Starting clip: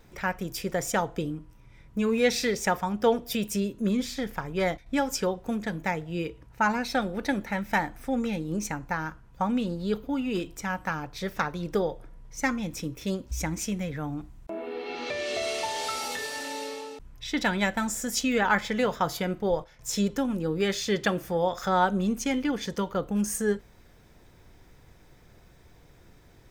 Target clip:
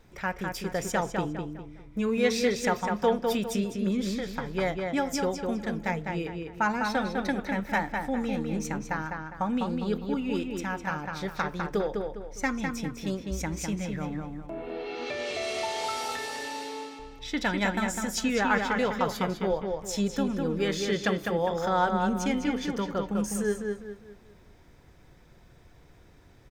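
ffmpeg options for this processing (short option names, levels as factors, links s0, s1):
-filter_complex "[0:a]highshelf=f=10000:g=-6,asplit=2[s0][s1];[s1]adelay=203,lowpass=f=3700:p=1,volume=0.631,asplit=2[s2][s3];[s3]adelay=203,lowpass=f=3700:p=1,volume=0.37,asplit=2[s4][s5];[s5]adelay=203,lowpass=f=3700:p=1,volume=0.37,asplit=2[s6][s7];[s7]adelay=203,lowpass=f=3700:p=1,volume=0.37,asplit=2[s8][s9];[s9]adelay=203,lowpass=f=3700:p=1,volume=0.37[s10];[s0][s2][s4][s6][s8][s10]amix=inputs=6:normalize=0,volume=0.794"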